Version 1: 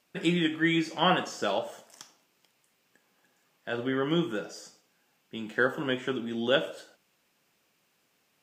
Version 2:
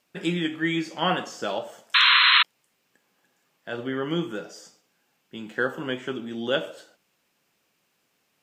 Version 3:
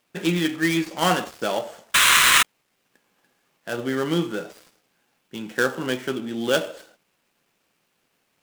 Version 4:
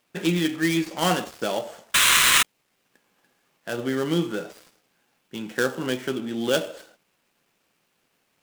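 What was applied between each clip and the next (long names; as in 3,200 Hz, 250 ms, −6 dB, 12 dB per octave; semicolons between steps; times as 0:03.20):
sound drawn into the spectrogram noise, 0:01.94–0:02.43, 970–4,200 Hz −17 dBFS
gap after every zero crossing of 0.093 ms; level +4 dB
dynamic equaliser 1,300 Hz, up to −4 dB, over −31 dBFS, Q 0.71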